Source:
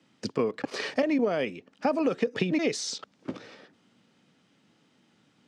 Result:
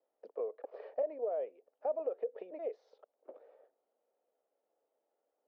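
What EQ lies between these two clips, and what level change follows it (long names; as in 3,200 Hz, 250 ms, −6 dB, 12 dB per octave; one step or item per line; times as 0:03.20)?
flat-topped band-pass 550 Hz, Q 2.1
high-frequency loss of the air 170 metres
first difference
+16.5 dB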